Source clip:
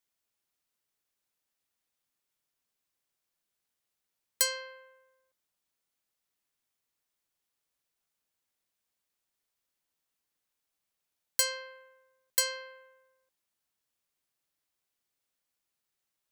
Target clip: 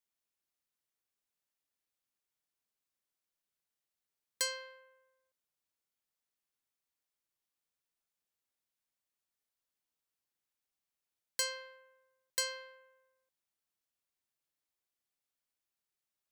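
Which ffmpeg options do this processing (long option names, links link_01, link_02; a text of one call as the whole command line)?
ffmpeg -i in.wav -filter_complex "[0:a]acrossover=split=8000[link_01][link_02];[link_02]acompressor=threshold=-32dB:ratio=4:attack=1:release=60[link_03];[link_01][link_03]amix=inputs=2:normalize=0,asplit=2[link_04][link_05];[link_05]aeval=exprs='sgn(val(0))*max(abs(val(0))-0.00355,0)':channel_layout=same,volume=-11dB[link_06];[link_04][link_06]amix=inputs=2:normalize=0,volume=-6.5dB" out.wav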